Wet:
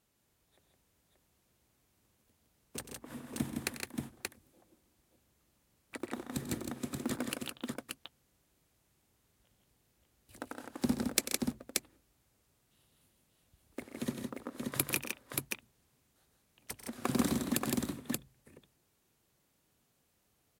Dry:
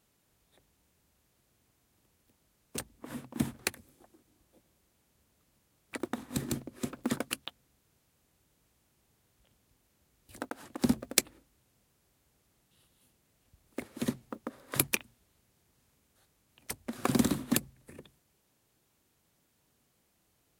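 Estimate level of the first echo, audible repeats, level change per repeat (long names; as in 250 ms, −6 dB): −13.5 dB, 4, repeats not evenly spaced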